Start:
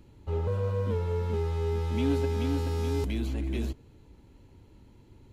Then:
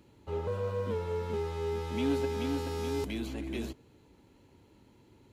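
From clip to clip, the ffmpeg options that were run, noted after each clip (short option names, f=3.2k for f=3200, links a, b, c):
-af "highpass=f=230:p=1"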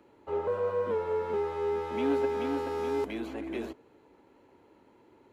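-filter_complex "[0:a]acrossover=split=300 2100:gain=0.141 1 0.2[a][b][c];[a][b][c]amix=inputs=3:normalize=0,volume=6dB"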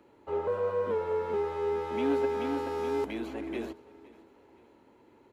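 -af "aecho=1:1:514|1028|1542:0.0841|0.0387|0.0178"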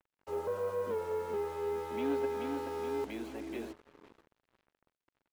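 -af "acrusher=bits=7:mix=0:aa=0.5,volume=-5dB"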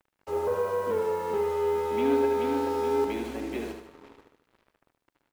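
-af "aecho=1:1:75|150|225|300|375|450:0.501|0.231|0.106|0.0488|0.0224|0.0103,volume=6.5dB"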